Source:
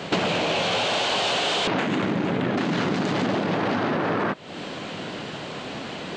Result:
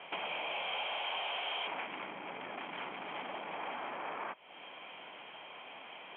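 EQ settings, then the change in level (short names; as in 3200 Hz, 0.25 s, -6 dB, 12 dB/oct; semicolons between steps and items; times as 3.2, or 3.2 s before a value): HPF 1400 Hz 6 dB/oct; rippled Chebyshev low-pass 3300 Hz, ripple 9 dB; -5.5 dB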